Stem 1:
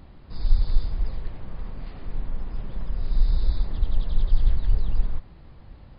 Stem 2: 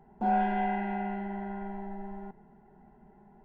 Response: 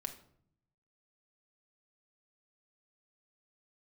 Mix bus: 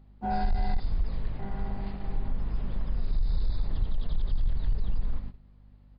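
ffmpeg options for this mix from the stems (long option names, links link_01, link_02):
-filter_complex "[0:a]aeval=exprs='val(0)+0.0126*(sin(2*PI*50*n/s)+sin(2*PI*2*50*n/s)/2+sin(2*PI*3*50*n/s)/3+sin(2*PI*4*50*n/s)/4+sin(2*PI*5*50*n/s)/5)':channel_layout=same,volume=-2dB,asplit=3[link_01][link_02][link_03];[link_02]volume=-9dB[link_04];[link_03]volume=-17.5dB[link_05];[1:a]volume=-5.5dB,asplit=3[link_06][link_07][link_08];[link_06]atrim=end=0.8,asetpts=PTS-STARTPTS,afade=type=out:start_time=0.796:duration=0.004:curve=hsin[link_09];[link_07]atrim=start=0.8:end=1.39,asetpts=PTS-STARTPTS,volume=0[link_10];[link_08]atrim=start=1.39,asetpts=PTS-STARTPTS,afade=type=in:duration=0.004:curve=hsin[link_11];[link_09][link_10][link_11]concat=n=3:v=0:a=1,asplit=2[link_12][link_13];[link_13]volume=-8.5dB[link_14];[2:a]atrim=start_sample=2205[link_15];[link_04][link_14]amix=inputs=2:normalize=0[link_16];[link_16][link_15]afir=irnorm=-1:irlink=0[link_17];[link_05]aecho=0:1:78|156|234|312|390|468|546|624:1|0.53|0.281|0.149|0.0789|0.0418|0.0222|0.0117[link_18];[link_01][link_12][link_17][link_18]amix=inputs=4:normalize=0,agate=range=-16dB:threshold=-32dB:ratio=16:detection=peak,asoftclip=type=tanh:threshold=-14dB,acompressor=threshold=-21dB:ratio=6"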